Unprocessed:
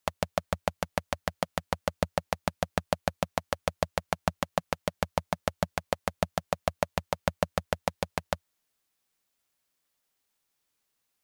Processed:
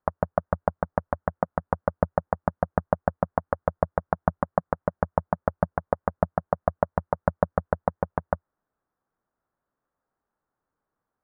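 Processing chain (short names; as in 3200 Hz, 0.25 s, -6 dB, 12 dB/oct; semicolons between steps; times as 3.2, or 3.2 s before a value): steep low-pass 1500 Hz 36 dB/oct; gain +5 dB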